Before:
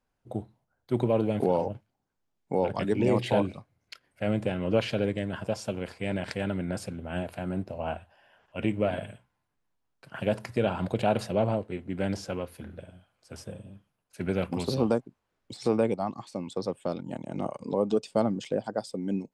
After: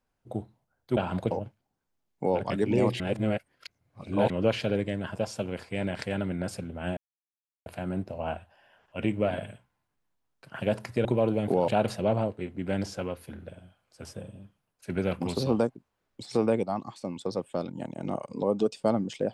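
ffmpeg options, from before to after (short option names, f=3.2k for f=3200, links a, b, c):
-filter_complex "[0:a]asplit=8[a][b][c][d][e][f][g][h];[a]atrim=end=0.972[i];[b]atrim=start=10.648:end=10.992[j];[c]atrim=start=1.598:end=3.292[k];[d]atrim=start=3.288:end=4.592,asetpts=PTS-STARTPTS,areverse[l];[e]atrim=start=4.588:end=7.26,asetpts=PTS-STARTPTS,afade=t=out:st=2.668:d=0.004:c=hsin,apad=pad_dur=0.69[m];[f]atrim=start=7.26:end=10.652,asetpts=PTS-STARTPTS,afade=t=in:d=0.004:c=hsin[n];[g]atrim=start=0.968:end=1.602[o];[h]atrim=start=10.988[p];[i][j]acrossfade=d=0.004:c1=hsin:c2=hsin[q];[q][k]acrossfade=d=0.004:c1=hsin:c2=hsin[r];[r][l]acrossfade=d=0.004:c1=hsin:c2=hsin[s];[m][n]concat=n=2:v=0:a=1[t];[s][t]acrossfade=d=0.004:c1=hsin:c2=hsin[u];[u][o]acrossfade=d=0.004:c1=hsin:c2=hsin[v];[v][p]acrossfade=d=0.004:c1=hsin:c2=hsin"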